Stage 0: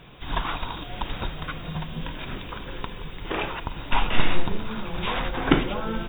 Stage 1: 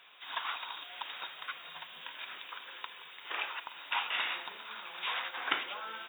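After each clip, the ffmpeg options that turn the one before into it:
ffmpeg -i in.wav -af "highpass=1200,volume=-4dB" out.wav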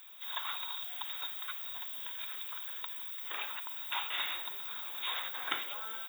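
ffmpeg -i in.wav -af "aexciter=amount=7:drive=9.4:freq=4400,volume=-4dB" out.wav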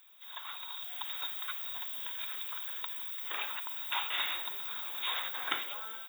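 ffmpeg -i in.wav -af "dynaudnorm=framelen=320:gausssize=5:maxgain=9dB,volume=-7dB" out.wav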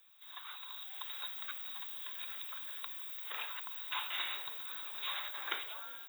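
ffmpeg -i in.wav -af "afreqshift=61,volume=-4.5dB" out.wav

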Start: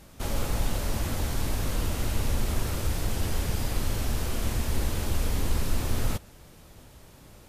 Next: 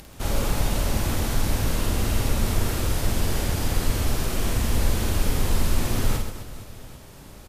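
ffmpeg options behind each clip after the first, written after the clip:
ffmpeg -i in.wav -filter_complex "[0:a]acompressor=mode=upward:threshold=-45dB:ratio=2.5,asplit=2[link_01][link_02];[link_02]aecho=0:1:50|130|258|462.8|790.5:0.631|0.398|0.251|0.158|0.1[link_03];[link_01][link_03]amix=inputs=2:normalize=0,volume=3dB" out.wav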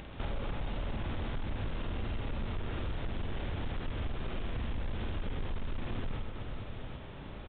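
ffmpeg -i in.wav -af "aresample=8000,asoftclip=type=tanh:threshold=-17dB,aresample=44100,acompressor=threshold=-34dB:ratio=4" out.wav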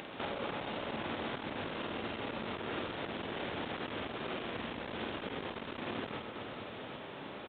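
ffmpeg -i in.wav -af "highpass=270,volume=5dB" out.wav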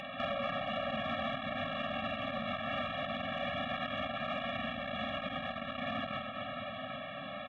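ffmpeg -i in.wav -filter_complex "[0:a]asplit=2[link_01][link_02];[link_02]highpass=frequency=720:poles=1,volume=7dB,asoftclip=type=tanh:threshold=-25.5dB[link_03];[link_01][link_03]amix=inputs=2:normalize=0,lowpass=frequency=2800:poles=1,volume=-6dB,afftfilt=real='re*eq(mod(floor(b*sr/1024/270),2),0)':imag='im*eq(mod(floor(b*sr/1024/270),2),0)':win_size=1024:overlap=0.75,volume=6.5dB" out.wav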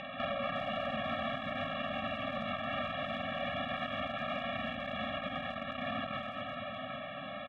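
ffmpeg -i in.wav -filter_complex "[0:a]lowpass=4600,asplit=2[link_01][link_02];[link_02]adelay=360,highpass=300,lowpass=3400,asoftclip=type=hard:threshold=-32.5dB,volume=-12dB[link_03];[link_01][link_03]amix=inputs=2:normalize=0" out.wav

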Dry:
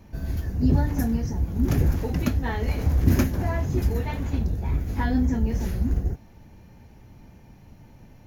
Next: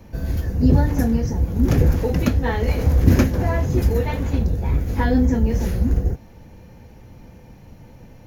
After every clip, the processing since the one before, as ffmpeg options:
ffmpeg -i in.wav -filter_complex "[0:a]equalizer=frequency=500:width=7.9:gain=9.5,acrossover=split=280|6900[link_01][link_02][link_03];[link_03]alimiter=level_in=9dB:limit=-24dB:level=0:latency=1:release=363,volume=-9dB[link_04];[link_01][link_02][link_04]amix=inputs=3:normalize=0,volume=5dB" out.wav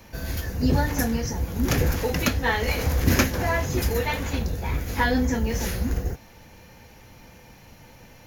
ffmpeg -i in.wav -af "tiltshelf=frequency=750:gain=-7.5" out.wav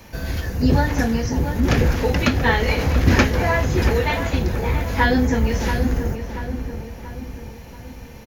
ffmpeg -i in.wav -filter_complex "[0:a]acrossover=split=5200[link_01][link_02];[link_02]acompressor=threshold=-48dB:ratio=4:attack=1:release=60[link_03];[link_01][link_03]amix=inputs=2:normalize=0,asplit=2[link_04][link_05];[link_05]adelay=683,lowpass=frequency=1900:poles=1,volume=-7.5dB,asplit=2[link_06][link_07];[link_07]adelay=683,lowpass=frequency=1900:poles=1,volume=0.51,asplit=2[link_08][link_09];[link_09]adelay=683,lowpass=frequency=1900:poles=1,volume=0.51,asplit=2[link_10][link_11];[link_11]adelay=683,lowpass=frequency=1900:poles=1,volume=0.51,asplit=2[link_12][link_13];[link_13]adelay=683,lowpass=frequency=1900:poles=1,volume=0.51,asplit=2[link_14][link_15];[link_15]adelay=683,lowpass=frequency=1900:poles=1,volume=0.51[link_16];[link_04][link_06][link_08][link_10][link_12][link_14][link_16]amix=inputs=7:normalize=0,volume=4.5dB" out.wav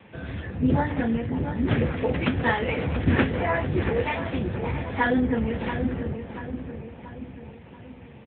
ffmpeg -i in.wav -af "volume=-3.5dB" -ar 8000 -c:a libopencore_amrnb -b:a 7950 out.amr

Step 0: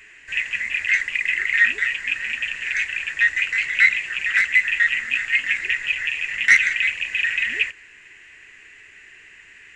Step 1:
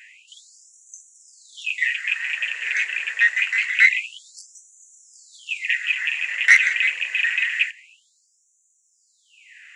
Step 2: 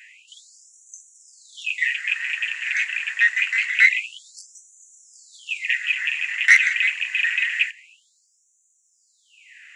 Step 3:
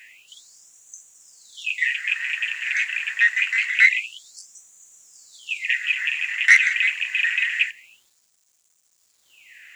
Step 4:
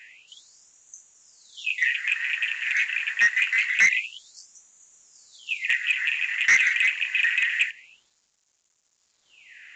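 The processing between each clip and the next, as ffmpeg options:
ffmpeg -i in.wav -af "aeval=exprs='0.75*(cos(1*acos(clip(val(0)/0.75,-1,1)))-cos(1*PI/2))+0.0299*(cos(3*acos(clip(val(0)/0.75,-1,1)))-cos(3*PI/2))':channel_layout=same,afftfilt=real='re*gte(b*sr/1024,350*pow(5900/350,0.5+0.5*sin(2*PI*0.26*pts/sr)))':imag='im*gte(b*sr/1024,350*pow(5900/350,0.5+0.5*sin(2*PI*0.26*pts/sr)))':win_size=1024:overlap=0.75,volume=1.5dB" out.wav
ffmpeg -i in.wav -af "highpass=1000" out.wav
ffmpeg -i in.wav -af "acrusher=bits=9:mix=0:aa=0.000001" out.wav
ffmpeg -i in.wav -af "aresample=16000,asoftclip=type=hard:threshold=-13dB,aresample=44100,highshelf=frequency=4800:gain=-4.5" out.wav

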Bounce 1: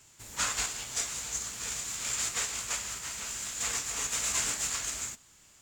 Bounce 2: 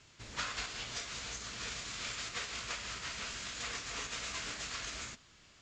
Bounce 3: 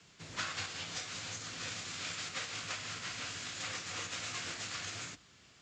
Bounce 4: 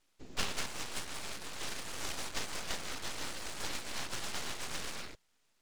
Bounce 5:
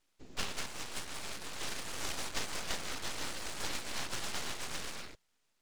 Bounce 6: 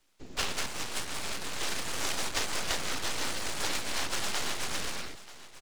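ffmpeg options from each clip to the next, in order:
ffmpeg -i in.wav -af "acompressor=threshold=-34dB:ratio=6,lowpass=frequency=5200:width=0.5412,lowpass=frequency=5200:width=1.3066,equalizer=frequency=870:width_type=o:width=0.25:gain=-5.5,volume=2dB" out.wav
ffmpeg -i in.wav -af "afreqshift=49" out.wav
ffmpeg -i in.wav -af "aeval=exprs='0.0631*(cos(1*acos(clip(val(0)/0.0631,-1,1)))-cos(1*PI/2))+0.00708*(cos(3*acos(clip(val(0)/0.0631,-1,1)))-cos(3*PI/2))':channel_layout=same,afwtdn=0.00355,aeval=exprs='abs(val(0))':channel_layout=same,volume=8.5dB" out.wav
ffmpeg -i in.wav -af "dynaudnorm=framelen=250:gausssize=9:maxgain=3.5dB,volume=-2.5dB" out.wav
ffmpeg -i in.wav -filter_complex "[0:a]acrossover=split=180|450|4000[link_01][link_02][link_03][link_04];[link_01]aeval=exprs='0.0133*(abs(mod(val(0)/0.0133+3,4)-2)-1)':channel_layout=same[link_05];[link_05][link_02][link_03][link_04]amix=inputs=4:normalize=0,aecho=1:1:935:0.141,volume=6.5dB" out.wav

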